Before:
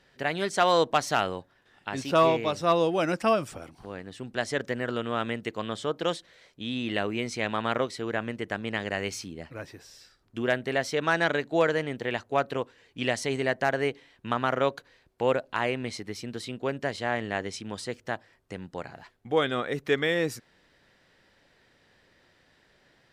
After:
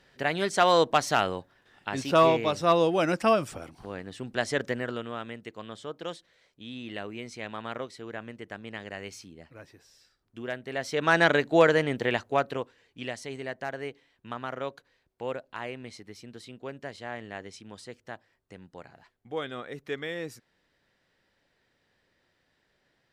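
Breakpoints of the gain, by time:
4.68 s +1 dB
5.24 s -8.5 dB
10.64 s -8.5 dB
11.17 s +4 dB
12.05 s +4 dB
13.17 s -9 dB

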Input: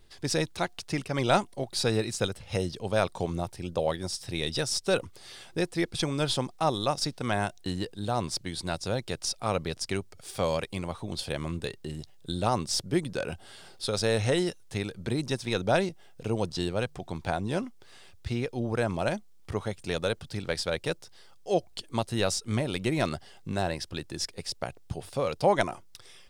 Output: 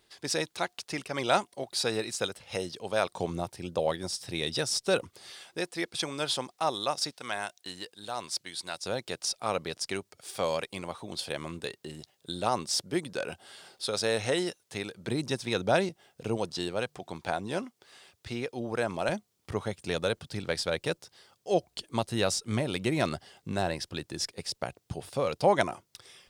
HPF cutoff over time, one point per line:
HPF 6 dB/oct
440 Hz
from 3.11 s 160 Hz
from 5.31 s 590 Hz
from 7.11 s 1300 Hz
from 8.86 s 350 Hz
from 15.08 s 140 Hz
from 16.37 s 320 Hz
from 19.09 s 94 Hz

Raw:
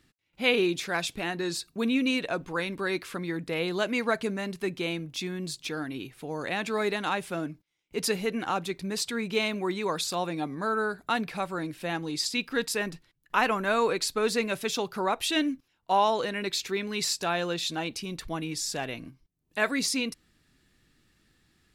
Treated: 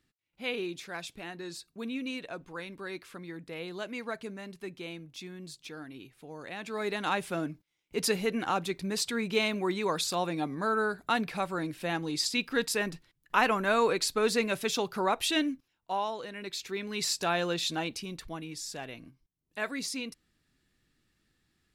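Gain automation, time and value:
6.55 s -10 dB
7.12 s -0.5 dB
15.27 s -0.5 dB
16.2 s -11 dB
17.22 s -0.5 dB
17.77 s -0.5 dB
18.45 s -7.5 dB

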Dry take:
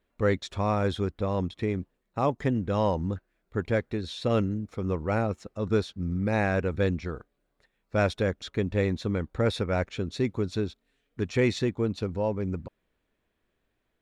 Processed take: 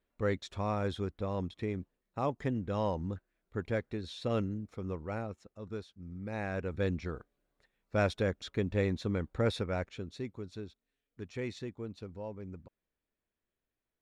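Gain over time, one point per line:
4.64 s -7 dB
5.94 s -17 dB
7 s -4.5 dB
9.49 s -4.5 dB
10.38 s -14 dB

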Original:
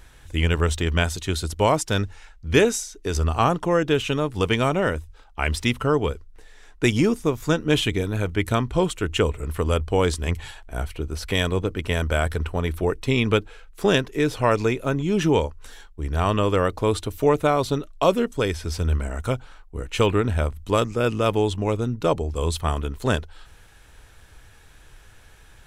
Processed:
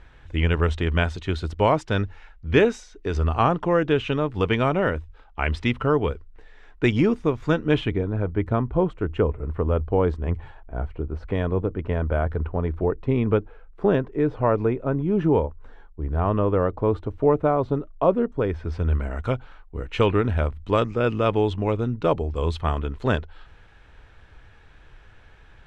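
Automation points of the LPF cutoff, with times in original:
7.64 s 2700 Hz
8.07 s 1100 Hz
18.33 s 1100 Hz
19.17 s 2900 Hz

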